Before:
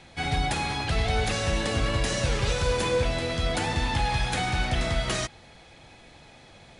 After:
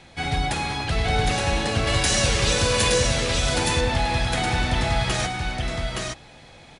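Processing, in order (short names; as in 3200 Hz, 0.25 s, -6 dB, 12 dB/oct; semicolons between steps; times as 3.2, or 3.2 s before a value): 1.87–2.94 high shelf 2800 Hz +10.5 dB; echo 0.869 s -3 dB; gain +2 dB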